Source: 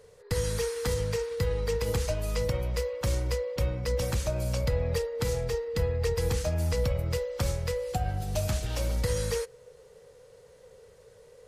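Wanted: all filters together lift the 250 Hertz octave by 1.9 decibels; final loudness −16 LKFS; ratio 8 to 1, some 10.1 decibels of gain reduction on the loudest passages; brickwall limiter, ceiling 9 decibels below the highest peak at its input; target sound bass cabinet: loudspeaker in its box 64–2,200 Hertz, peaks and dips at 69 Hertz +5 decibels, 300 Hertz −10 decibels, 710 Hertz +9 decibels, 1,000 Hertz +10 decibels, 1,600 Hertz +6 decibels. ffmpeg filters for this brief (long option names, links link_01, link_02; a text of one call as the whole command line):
ffmpeg -i in.wav -af "equalizer=frequency=250:width_type=o:gain=5.5,acompressor=threshold=-33dB:ratio=8,alimiter=level_in=6.5dB:limit=-24dB:level=0:latency=1,volume=-6.5dB,highpass=frequency=64:width=0.5412,highpass=frequency=64:width=1.3066,equalizer=frequency=69:width_type=q:width=4:gain=5,equalizer=frequency=300:width_type=q:width=4:gain=-10,equalizer=frequency=710:width_type=q:width=4:gain=9,equalizer=frequency=1000:width_type=q:width=4:gain=10,equalizer=frequency=1600:width_type=q:width=4:gain=6,lowpass=frequency=2200:width=0.5412,lowpass=frequency=2200:width=1.3066,volume=23dB" out.wav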